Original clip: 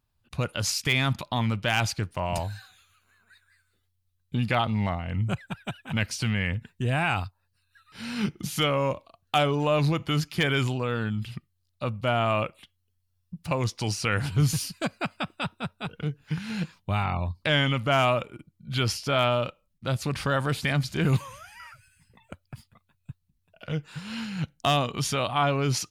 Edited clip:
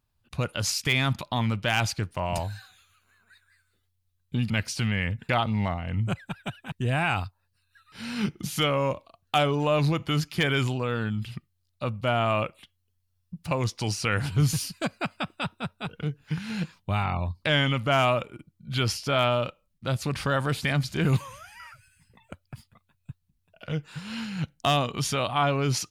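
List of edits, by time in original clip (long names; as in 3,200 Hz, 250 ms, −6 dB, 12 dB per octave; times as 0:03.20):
0:05.93–0:06.72: move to 0:04.50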